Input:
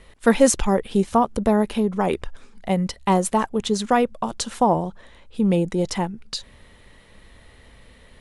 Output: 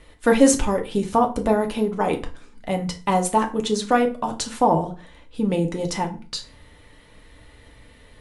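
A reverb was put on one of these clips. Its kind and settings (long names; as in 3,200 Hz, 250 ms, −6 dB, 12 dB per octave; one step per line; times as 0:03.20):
feedback delay network reverb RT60 0.36 s, low-frequency decay 1.25×, high-frequency decay 0.8×, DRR 3 dB
level −1.5 dB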